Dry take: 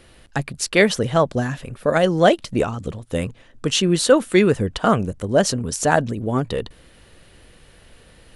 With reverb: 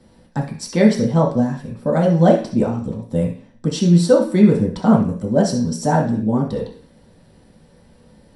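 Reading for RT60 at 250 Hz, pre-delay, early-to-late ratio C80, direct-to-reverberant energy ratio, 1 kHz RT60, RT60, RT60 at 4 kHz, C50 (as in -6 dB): 0.55 s, 3 ms, 13.0 dB, -4.0 dB, 0.45 s, 0.45 s, no reading, 8.0 dB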